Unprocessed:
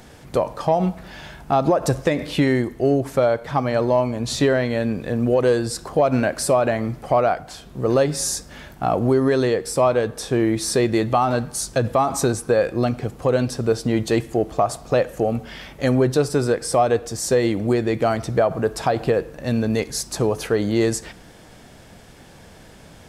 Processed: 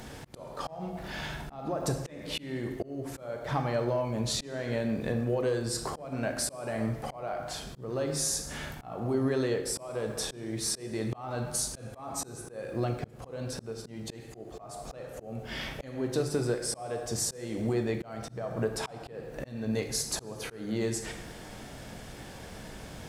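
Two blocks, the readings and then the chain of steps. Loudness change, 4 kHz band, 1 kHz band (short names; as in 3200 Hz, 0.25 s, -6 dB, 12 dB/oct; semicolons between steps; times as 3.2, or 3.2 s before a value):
-12.5 dB, -6.5 dB, -16.0 dB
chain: compressor 4:1, threshold -29 dBFS, peak gain reduction 13.5 dB; crackle 440/s -54 dBFS; plate-style reverb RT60 0.94 s, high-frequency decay 0.85×, pre-delay 0 ms, DRR 5 dB; auto swell 0.336 s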